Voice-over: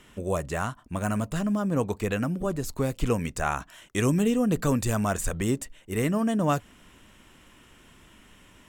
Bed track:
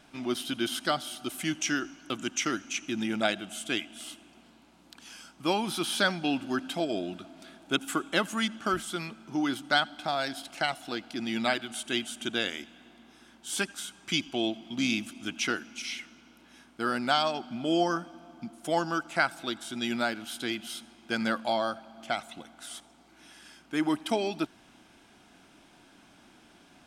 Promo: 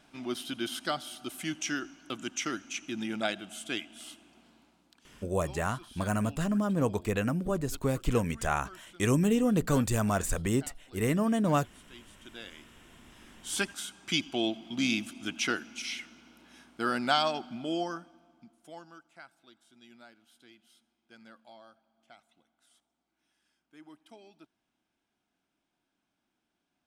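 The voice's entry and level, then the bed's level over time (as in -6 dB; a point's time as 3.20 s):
5.05 s, -2.0 dB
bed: 4.61 s -4 dB
5.38 s -22 dB
12.00 s -22 dB
13.37 s -0.5 dB
17.33 s -0.5 dB
19.17 s -25 dB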